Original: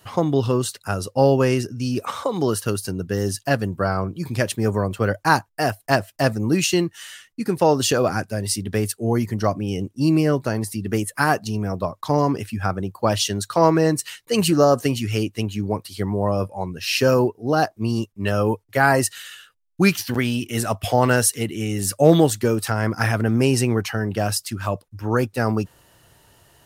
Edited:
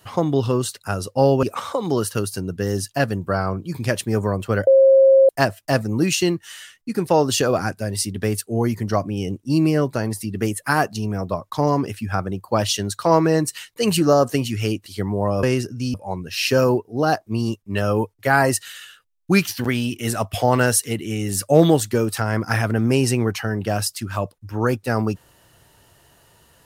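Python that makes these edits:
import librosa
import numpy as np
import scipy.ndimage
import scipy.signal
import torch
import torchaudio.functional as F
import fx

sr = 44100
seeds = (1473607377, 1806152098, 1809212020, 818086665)

y = fx.edit(x, sr, fx.move(start_s=1.43, length_s=0.51, to_s=16.44),
    fx.bleep(start_s=5.18, length_s=0.62, hz=537.0, db=-8.5),
    fx.cut(start_s=15.37, length_s=0.5), tone=tone)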